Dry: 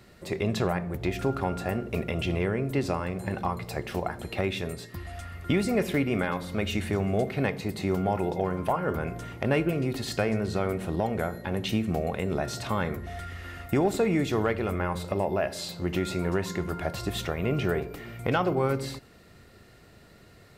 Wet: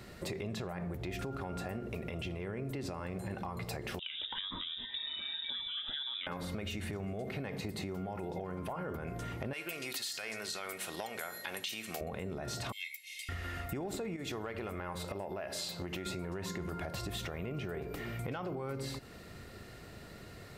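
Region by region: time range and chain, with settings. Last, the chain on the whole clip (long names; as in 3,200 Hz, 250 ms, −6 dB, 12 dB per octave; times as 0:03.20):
0:03.99–0:06.27: downward compressor 3 to 1, threshold −35 dBFS + voice inversion scrambler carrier 3,700 Hz + phaser whose notches keep moving one way rising 1.8 Hz
0:09.53–0:12.01: high-pass filter 660 Hz 6 dB per octave + tilt shelving filter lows −9.5 dB, about 1,500 Hz
0:12.72–0:13.29: Butterworth high-pass 2,100 Hz 96 dB per octave + comb filter 1.9 ms, depth 82%
0:14.16–0:16.06: downward compressor, threshold −29 dBFS + low-shelf EQ 390 Hz −6 dB
whole clip: brickwall limiter −24.5 dBFS; downward compressor, threshold −40 dBFS; level +3.5 dB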